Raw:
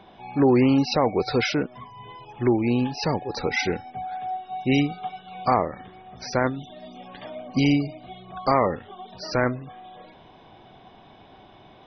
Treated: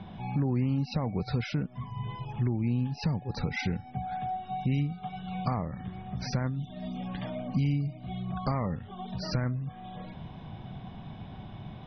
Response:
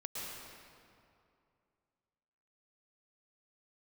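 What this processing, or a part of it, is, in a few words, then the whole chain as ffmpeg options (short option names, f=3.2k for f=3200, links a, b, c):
jukebox: -af "lowpass=5k,equalizer=f=92:w=0.54:g=3,lowshelf=f=250:t=q:w=1.5:g=10.5,acompressor=threshold=-31dB:ratio=3"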